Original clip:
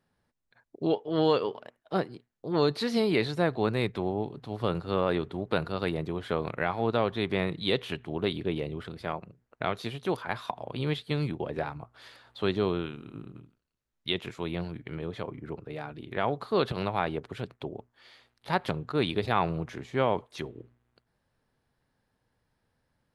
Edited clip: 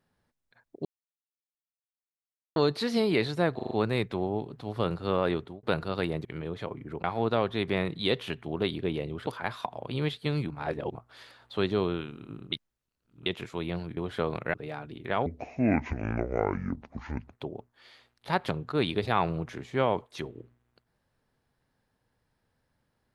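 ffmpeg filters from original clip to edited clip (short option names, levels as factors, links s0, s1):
-filter_complex "[0:a]asplit=19[s0][s1][s2][s3][s4][s5][s6][s7][s8][s9][s10][s11][s12][s13][s14][s15][s16][s17][s18];[s0]atrim=end=0.85,asetpts=PTS-STARTPTS,afade=t=out:st=0.846:d=0.004:c=hsin[s19];[s1]atrim=start=0.85:end=2.56,asetpts=PTS-STARTPTS,volume=0[s20];[s2]atrim=start=2.56:end=3.592,asetpts=PTS-STARTPTS,afade=t=in:d=0.004:c=hsin[s21];[s3]atrim=start=3.548:end=3.592[s22];[s4]atrim=start=3.548:end=3.592[s23];[s5]atrim=start=3.548:end=3.592[s24];[s6]atrim=start=3.548:end=5.47,asetpts=PTS-STARTPTS,afade=t=out:st=1.662:d=0.26[s25];[s7]atrim=start=5.47:end=6.092,asetpts=PTS-STARTPTS,afade=t=in:d=0.004:c=hsin[s26];[s8]atrim=start=14.818:end=15.612[s27];[s9]atrim=start=6.658:end=8.892[s28];[s10]atrim=start=10.118:end=11.352[s29];[s11]atrim=start=11.348:end=11.802,asetpts=PTS-STARTPTS,areverse[s30];[s12]atrim=start=11.798:end=13.372[s31];[s13]atrim=start=13.368:end=14.112,asetpts=PTS-STARTPTS,areverse[s32];[s14]atrim=start=14.108:end=14.822[s33];[s15]atrim=start=6.088:end=6.662[s34];[s16]atrim=start=15.608:end=16.334[s35];[s17]atrim=start=16.33:end=17.53,asetpts=PTS-STARTPTS,asetrate=25578,aresample=44100,atrim=end_sample=91241,asetpts=PTS-STARTPTS[s36];[s18]atrim=start=17.526[s37];[s19][s20][s21]concat=n=3:v=0:a=1[s38];[s38][s22]acrossfade=d=0.004:c1=hsin:c2=hsin[s39];[s39][s23]acrossfade=d=0.004:c1=hsin:c2=hsin[s40];[s40][s24]acrossfade=d=0.004:c1=hsin:c2=hsin[s41];[s25][s26]concat=n=2:v=0:a=1[s42];[s41][s42]acrossfade=d=0.004:c1=hsin:c2=hsin[s43];[s43][s27]acrossfade=d=0.004:c1=hsin:c2=hsin[s44];[s44][s28]acrossfade=d=0.004:c1=hsin:c2=hsin[s45];[s45][s29]acrossfade=d=0.004:c1=hsin:c2=hsin[s46];[s46][s30]acrossfade=d=0.004:c1=hsin:c2=hsin[s47];[s47][s31]acrossfade=d=0.004:c1=hsin:c2=hsin[s48];[s48][s32]acrossfade=d=0.004:c1=hsin:c2=hsin[s49];[s49][s33]acrossfade=d=0.004:c1=hsin:c2=hsin[s50];[s50][s34]acrossfade=d=0.004:c1=hsin:c2=hsin[s51];[s51][s35]acrossfade=d=0.004:c1=hsin:c2=hsin[s52];[s52][s36]acrossfade=d=0.004:c1=hsin:c2=hsin[s53];[s53][s37]acrossfade=d=0.004:c1=hsin:c2=hsin"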